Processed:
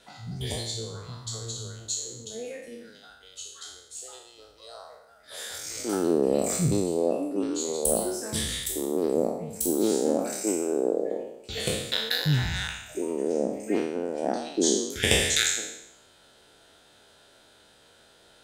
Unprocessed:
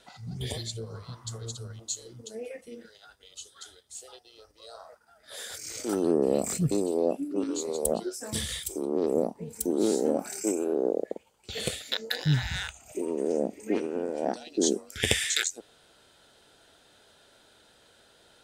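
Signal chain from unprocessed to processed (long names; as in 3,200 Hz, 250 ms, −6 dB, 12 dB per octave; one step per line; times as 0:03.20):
peak hold with a decay on every bin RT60 0.82 s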